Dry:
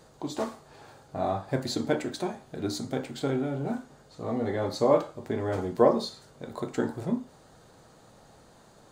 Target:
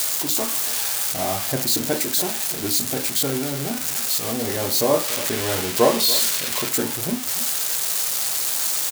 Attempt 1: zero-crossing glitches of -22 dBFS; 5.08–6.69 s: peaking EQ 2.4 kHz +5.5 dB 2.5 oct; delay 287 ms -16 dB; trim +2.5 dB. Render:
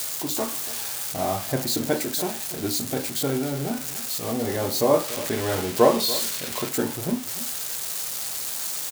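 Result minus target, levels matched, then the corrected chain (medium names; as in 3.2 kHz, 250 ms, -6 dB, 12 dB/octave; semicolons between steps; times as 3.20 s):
zero-crossing glitches: distortion -7 dB
zero-crossing glitches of -15 dBFS; 5.08–6.69 s: peaking EQ 2.4 kHz +5.5 dB 2.5 oct; delay 287 ms -16 dB; trim +2.5 dB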